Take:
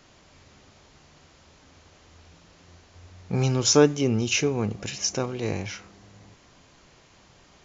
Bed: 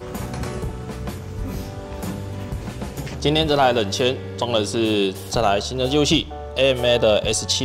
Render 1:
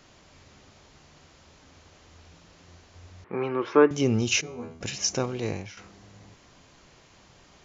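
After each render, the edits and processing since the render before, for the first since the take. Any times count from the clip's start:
0:03.24–0:03.91: loudspeaker in its box 350–2,300 Hz, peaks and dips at 350 Hz +7 dB, 710 Hz −6 dB, 1,100 Hz +8 dB, 1,900 Hz +4 dB
0:04.41–0:04.81: tuned comb filter 81 Hz, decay 0.43 s, mix 100%
0:05.37–0:05.77: fade out, to −12.5 dB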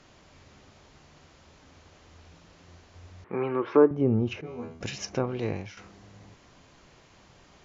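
treble cut that deepens with the level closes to 930 Hz, closed at −20 dBFS
high-shelf EQ 4,100 Hz −5 dB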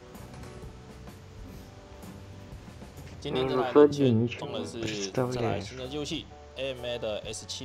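mix in bed −16.5 dB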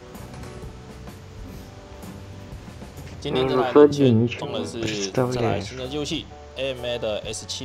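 level +6.5 dB
brickwall limiter −3 dBFS, peak gain reduction 2 dB

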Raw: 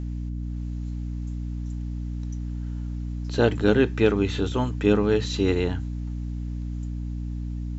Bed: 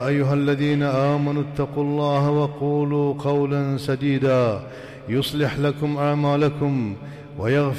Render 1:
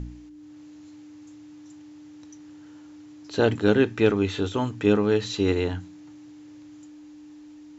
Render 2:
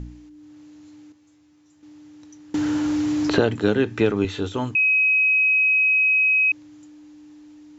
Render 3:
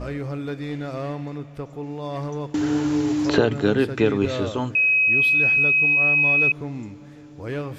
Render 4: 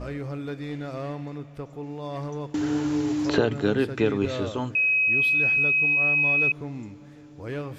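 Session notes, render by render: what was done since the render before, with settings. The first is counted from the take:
hum removal 60 Hz, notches 4
0:01.12–0:01.83: tuned comb filter 82 Hz, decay 0.24 s, mix 90%; 0:02.54–0:04.25: multiband upward and downward compressor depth 100%; 0:04.75–0:06.52: beep over 2,540 Hz −15 dBFS
mix in bed −10 dB
level −3.5 dB

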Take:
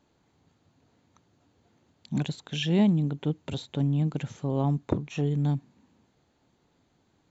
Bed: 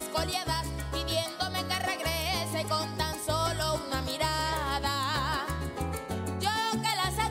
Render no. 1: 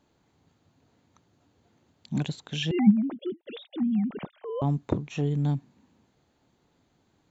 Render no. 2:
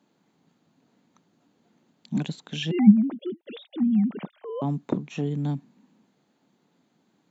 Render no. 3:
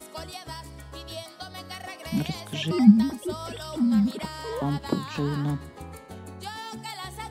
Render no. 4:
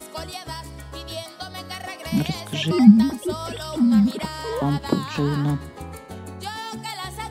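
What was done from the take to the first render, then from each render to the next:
0:02.71–0:04.62: three sine waves on the formant tracks
Chebyshev high-pass filter 190 Hz, order 3; bass and treble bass +7 dB, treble −1 dB
mix in bed −8 dB
level +5 dB; brickwall limiter −1 dBFS, peak gain reduction 2 dB

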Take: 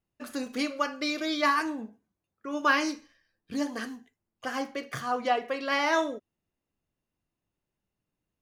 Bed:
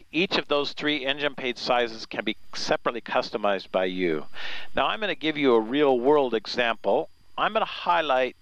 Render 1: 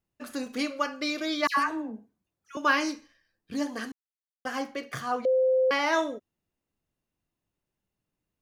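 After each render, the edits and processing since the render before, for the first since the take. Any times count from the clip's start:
0:01.47–0:02.57: all-pass dispersion lows, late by 104 ms, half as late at 1,700 Hz
0:03.92–0:04.45: silence
0:05.25–0:05.71: beep over 518 Hz −19.5 dBFS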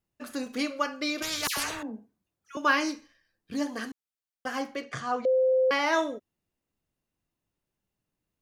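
0:01.22–0:01.83: every bin compressed towards the loudest bin 4 to 1
0:04.82–0:05.52: Chebyshev low-pass filter 7,800 Hz, order 3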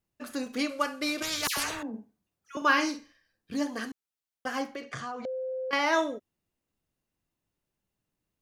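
0:00.69–0:01.25: variable-slope delta modulation 64 kbit/s
0:01.89–0:03.57: double-tracking delay 49 ms −10 dB
0:04.75–0:05.73: downward compressor 12 to 1, threshold −32 dBFS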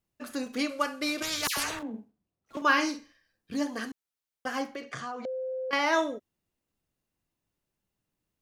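0:01.79–0:02.63: running median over 25 samples
0:04.91–0:05.70: high-pass filter 130 Hz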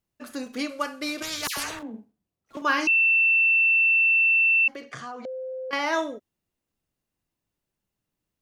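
0:02.87–0:04.68: beep over 2,680 Hz −16.5 dBFS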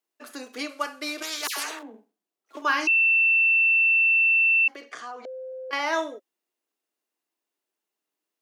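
high-pass filter 320 Hz 24 dB per octave
notch filter 540 Hz, Q 12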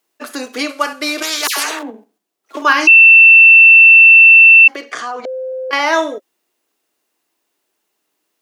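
in parallel at −1 dB: output level in coarse steps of 22 dB
on the sum: boost into a limiter +10.5 dB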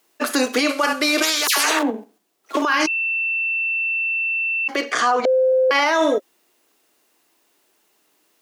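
compressor whose output falls as the input rises −17 dBFS, ratio −1
brickwall limiter −9 dBFS, peak gain reduction 11 dB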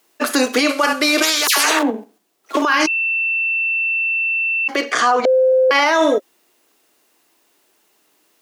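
level +3 dB

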